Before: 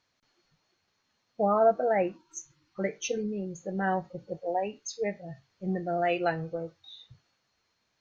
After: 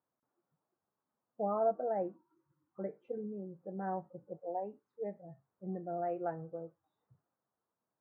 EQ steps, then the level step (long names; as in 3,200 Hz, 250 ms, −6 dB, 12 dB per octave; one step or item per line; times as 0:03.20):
high-pass filter 140 Hz 12 dB per octave
low-pass filter 1,200 Hz 24 dB per octave
−8.5 dB